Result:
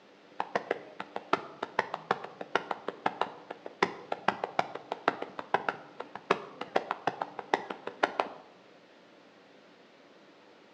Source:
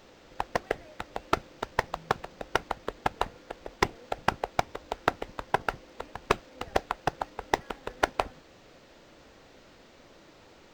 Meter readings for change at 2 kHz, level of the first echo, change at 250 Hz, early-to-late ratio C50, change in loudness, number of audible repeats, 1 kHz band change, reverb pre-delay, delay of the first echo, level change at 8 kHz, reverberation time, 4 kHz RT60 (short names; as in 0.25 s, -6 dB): -1.5 dB, none, -1.5 dB, 15.5 dB, -2.0 dB, none, -1.5 dB, 10 ms, none, -9.5 dB, 0.95 s, 0.65 s